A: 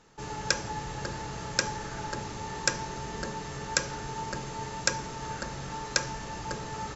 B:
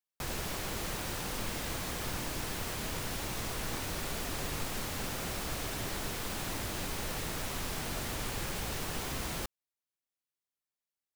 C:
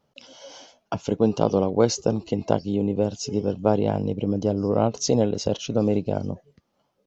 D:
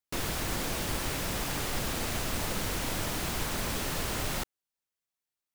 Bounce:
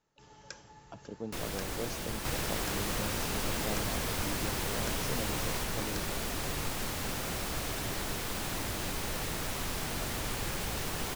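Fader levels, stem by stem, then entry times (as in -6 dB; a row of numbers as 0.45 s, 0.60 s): -19.5 dB, +1.5 dB, -20.0 dB, -5.5 dB; 0.00 s, 2.05 s, 0.00 s, 1.20 s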